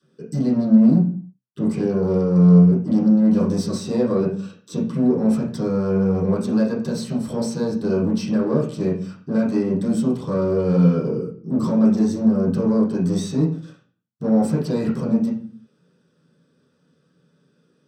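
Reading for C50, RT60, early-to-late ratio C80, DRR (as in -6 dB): 7.0 dB, 0.45 s, 11.5 dB, -11.0 dB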